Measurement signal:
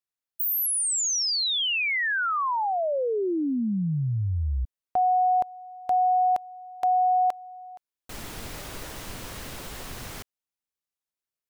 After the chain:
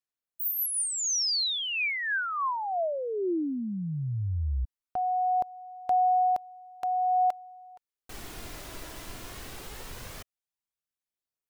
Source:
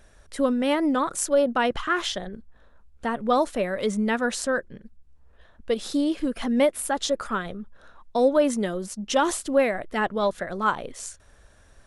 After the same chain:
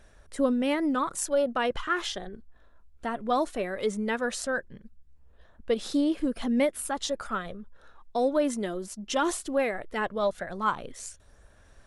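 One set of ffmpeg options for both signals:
-af "aphaser=in_gain=1:out_gain=1:delay=3:decay=0.3:speed=0.17:type=sinusoidal,volume=0.596"

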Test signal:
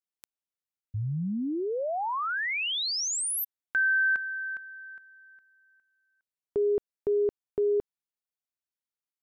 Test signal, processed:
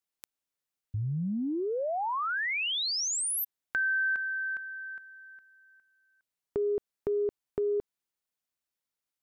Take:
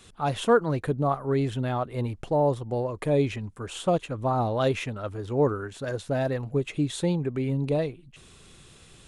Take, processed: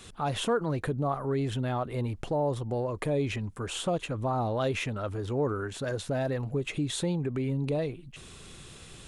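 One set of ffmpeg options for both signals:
-af "acompressor=threshold=0.0112:ratio=2:attack=18:release=28:knee=6,volume=1.58"

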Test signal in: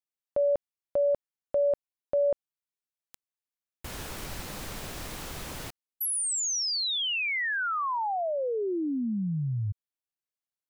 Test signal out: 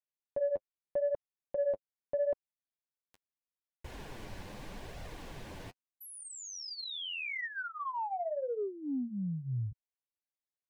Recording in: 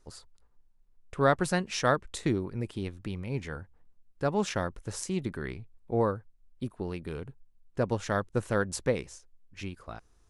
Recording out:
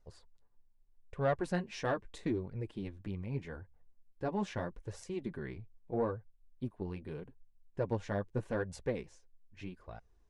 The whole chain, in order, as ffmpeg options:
-af "lowpass=f=2100:p=1,bandreject=f=1300:w=5.6,flanger=delay=1.4:depth=9.1:regen=-16:speed=0.8:shape=sinusoidal,asoftclip=type=tanh:threshold=0.112,volume=0.794"

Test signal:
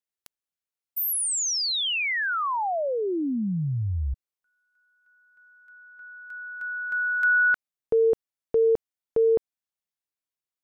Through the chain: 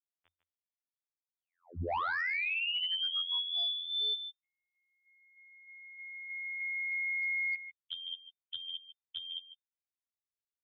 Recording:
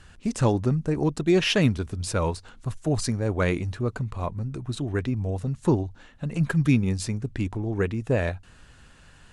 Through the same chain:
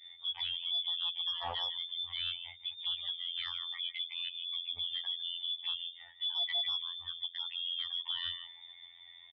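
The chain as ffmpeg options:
-af "acompressor=threshold=0.0251:ratio=5:attack=3.5:release=268:knee=6:detection=peak,lowpass=f=3100:t=q:w=0.5098,lowpass=f=3100:t=q:w=0.6013,lowpass=f=3100:t=q:w=0.9,lowpass=f=3100:t=q:w=2.563,afreqshift=-3600,adynamicequalizer=threshold=0.00158:dfrequency=840:dqfactor=2:tfrequency=840:tqfactor=2:attack=5:release=100:ratio=0.375:range=2.5:mode=boostabove:tftype=bell,afftfilt=real='hypot(re,im)*cos(PI*b)':imag='0':win_size=2048:overlap=0.75,aecho=1:1:150:0.282,aresample=11025,volume=42.2,asoftclip=hard,volume=0.0237,aresample=44100,equalizer=f=87:t=o:w=0.37:g=14.5,afftdn=nr=14:nf=-51,volume=1.41"

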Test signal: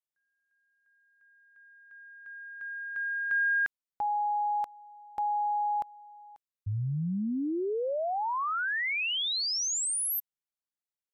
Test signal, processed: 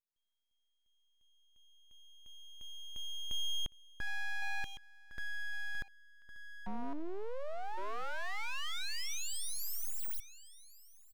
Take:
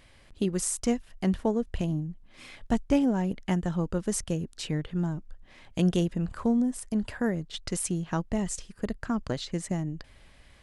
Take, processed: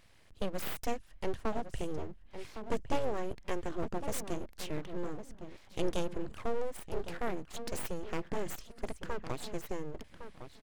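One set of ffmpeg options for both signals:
-filter_complex "[0:a]asplit=2[s0][s1];[s1]adelay=1109,lowpass=f=1800:p=1,volume=0.316,asplit=2[s2][s3];[s3]adelay=1109,lowpass=f=1800:p=1,volume=0.17[s4];[s0][s2][s4]amix=inputs=3:normalize=0,aeval=exprs='abs(val(0))':c=same,volume=0.562"

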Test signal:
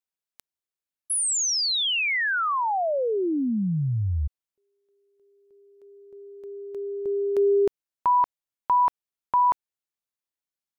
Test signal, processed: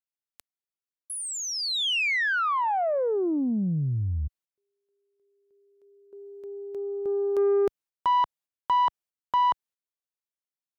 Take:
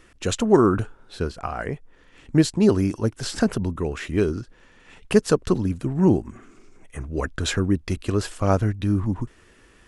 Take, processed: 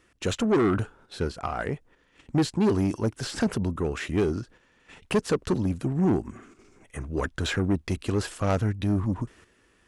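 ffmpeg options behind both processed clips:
-filter_complex "[0:a]agate=range=0.398:threshold=0.00447:ratio=16:release=135:detection=rms,acrossover=split=3600[s0][s1];[s1]acompressor=threshold=0.02:ratio=4:attack=1:release=60[s2];[s0][s2]amix=inputs=2:normalize=0,aeval=exprs='0.75*(cos(1*acos(clip(val(0)/0.75,-1,1)))-cos(1*PI/2))+0.0335*(cos(8*acos(clip(val(0)/0.75,-1,1)))-cos(8*PI/2))':c=same,asoftclip=type=tanh:threshold=0.15,highpass=f=64:p=1"

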